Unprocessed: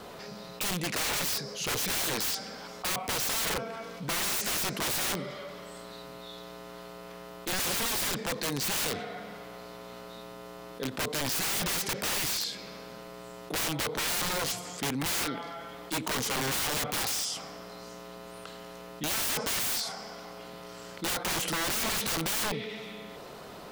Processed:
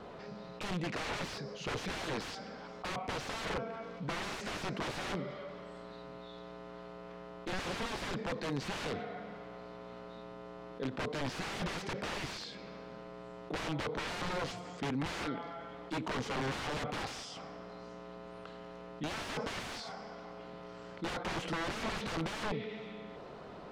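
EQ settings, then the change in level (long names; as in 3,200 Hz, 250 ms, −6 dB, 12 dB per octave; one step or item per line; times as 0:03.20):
head-to-tape spacing loss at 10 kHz 24 dB
−1.5 dB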